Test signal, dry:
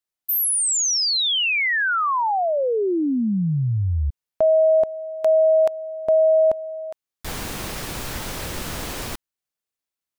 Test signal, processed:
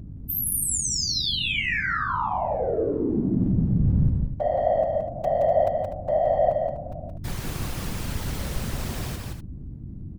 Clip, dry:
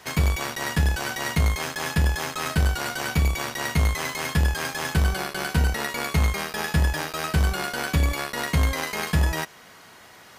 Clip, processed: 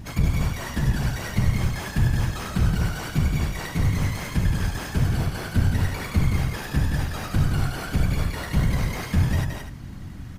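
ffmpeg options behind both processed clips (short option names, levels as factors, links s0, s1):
-filter_complex "[0:a]lowshelf=f=180:g=10.5,asplit=2[s0][s1];[s1]asoftclip=type=tanh:threshold=0.126,volume=0.398[s2];[s0][s2]amix=inputs=2:normalize=0,aeval=exprs='val(0)+0.0447*(sin(2*PI*50*n/s)+sin(2*PI*2*50*n/s)/2+sin(2*PI*3*50*n/s)/3+sin(2*PI*4*50*n/s)/4+sin(2*PI*5*50*n/s)/5)':c=same,afftfilt=real='hypot(re,im)*cos(2*PI*random(0))':imag='hypot(re,im)*sin(2*PI*random(1))':win_size=512:overlap=0.75,aecho=1:1:172|247.8:0.631|0.282,volume=0.668"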